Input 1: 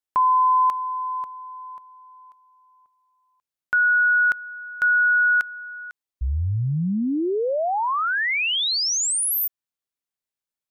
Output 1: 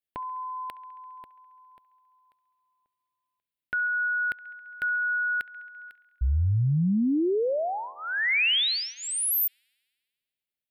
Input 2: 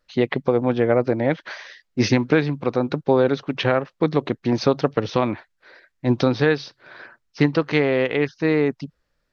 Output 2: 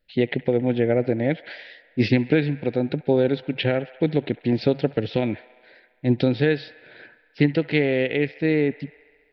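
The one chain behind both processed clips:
phaser with its sweep stopped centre 2,700 Hz, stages 4
delay with a band-pass on its return 68 ms, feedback 77%, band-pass 1,400 Hz, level −17.5 dB

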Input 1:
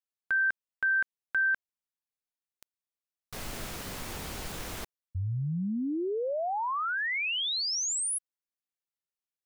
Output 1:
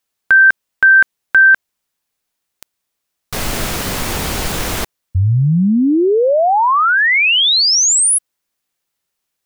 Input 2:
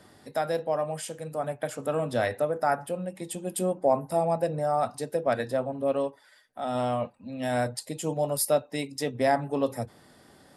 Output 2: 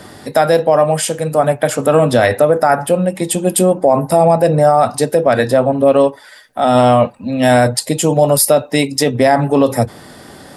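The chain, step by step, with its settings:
boost into a limiter +19.5 dB
level −1 dB

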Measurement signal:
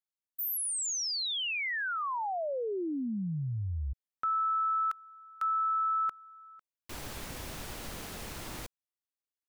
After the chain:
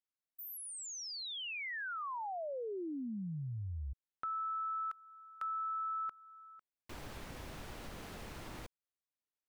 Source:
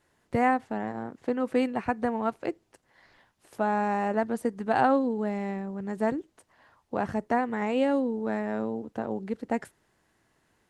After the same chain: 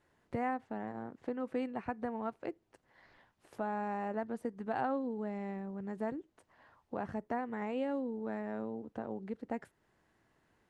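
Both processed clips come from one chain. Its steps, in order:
high-shelf EQ 4,400 Hz −10 dB
downward compressor 1.5 to 1, threshold −44 dBFS
level −2.5 dB

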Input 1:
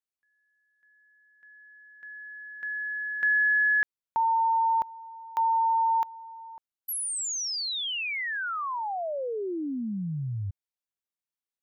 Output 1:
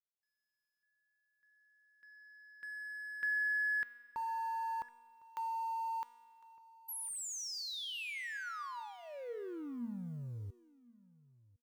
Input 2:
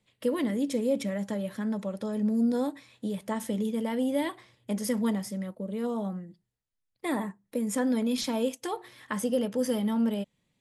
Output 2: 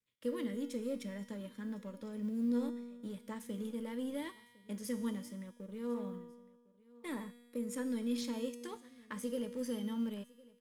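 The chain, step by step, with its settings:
mu-law and A-law mismatch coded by A
parametric band 720 Hz −13.5 dB 0.33 octaves
tuned comb filter 240 Hz, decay 1.4 s, mix 80%
on a send: single-tap delay 1,056 ms −22.5 dB
on the sum: level +3.5 dB

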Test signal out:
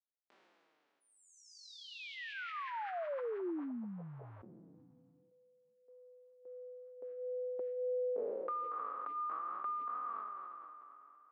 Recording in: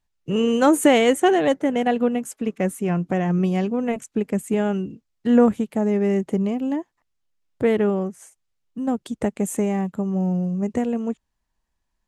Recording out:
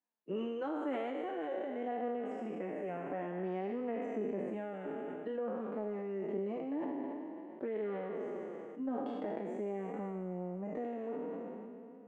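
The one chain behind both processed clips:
peak hold with a decay on every bin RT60 2.05 s
high-pass filter 260 Hz 24 dB per octave
high-shelf EQ 4,600 Hz −5.5 dB
downward compressor 10 to 1, threshold −26 dBFS
head-to-tape spacing loss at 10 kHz 37 dB
flanger 0.5 Hz, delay 3.9 ms, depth 3.5 ms, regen −18%
level that may fall only so fast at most 20 dB per second
level −4.5 dB

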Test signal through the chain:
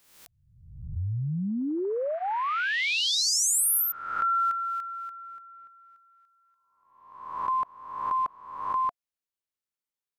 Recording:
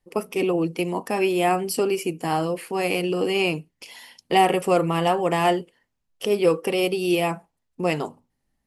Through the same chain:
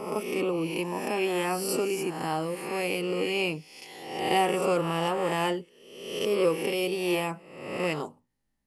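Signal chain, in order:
peak hold with a rise ahead of every peak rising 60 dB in 0.96 s
notch filter 700 Hz, Q 12
level −7 dB

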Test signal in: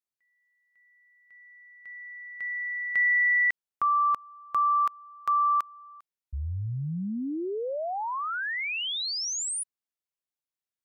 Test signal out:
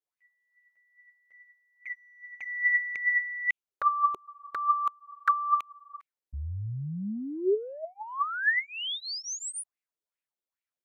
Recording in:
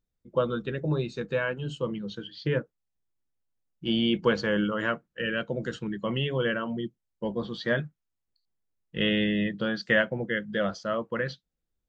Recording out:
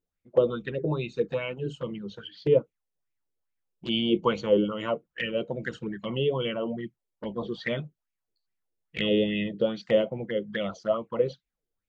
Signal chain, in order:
flanger swept by the level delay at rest 11.4 ms, full sweep at −27 dBFS
auto-filter bell 2.4 Hz 380–2,400 Hz +15 dB
level −2.5 dB

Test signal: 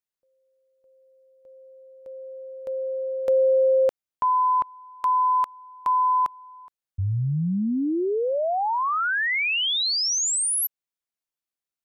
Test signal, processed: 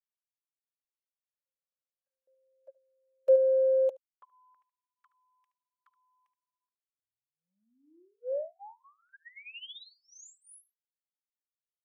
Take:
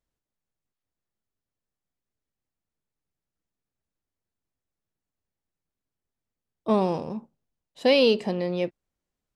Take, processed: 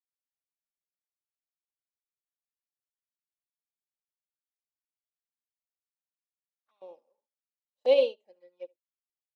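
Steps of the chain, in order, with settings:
high-pass filter 160 Hz 12 dB per octave
comb filter 3.6 ms, depth 44%
flanger swept by the level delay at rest 8.8 ms, full sweep at −20.5 dBFS
auto-filter high-pass square 0.22 Hz 520–1,600 Hz
on a send: single-tap delay 73 ms −11.5 dB
on the sum: expander for the loud parts 2.5 to 1, over −30 dBFS
level −8.5 dB

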